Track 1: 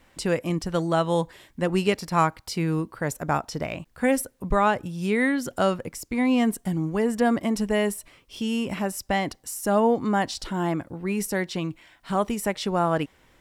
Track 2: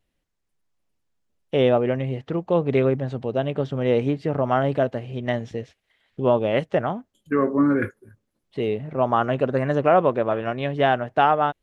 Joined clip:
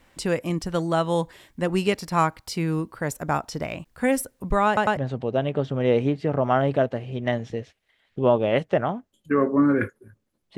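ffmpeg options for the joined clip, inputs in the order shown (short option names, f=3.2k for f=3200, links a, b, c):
-filter_complex "[0:a]apad=whole_dur=10.57,atrim=end=10.57,asplit=3[a][b][c];[a]atrim=end=4.772[d];[b]atrim=start=4.668:end=4.772[e];[c]atrim=start=4.668:end=4.772[f];[1:a]atrim=start=2.978:end=8.58[g];[d][e]acrossfade=d=0.004:c1=hsin:c2=hsin[h];[h][f]acrossfade=d=0.004:c1=hsin:c2=hsin[i];[i][g]acrossfade=d=0.004:c1=hsin:c2=hsin"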